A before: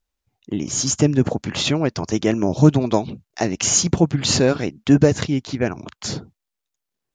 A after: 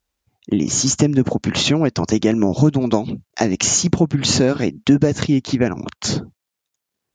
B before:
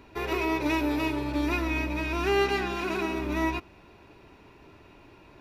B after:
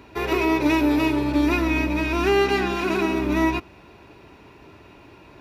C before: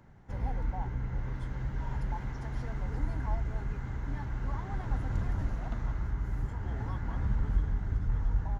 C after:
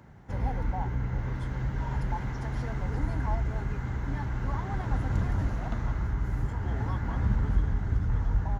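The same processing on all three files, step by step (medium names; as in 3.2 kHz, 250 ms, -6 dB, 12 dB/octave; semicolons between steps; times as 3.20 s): high-pass 46 Hz; compression 3:1, threshold -21 dBFS; dynamic bell 240 Hz, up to +4 dB, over -36 dBFS, Q 1.1; trim +5.5 dB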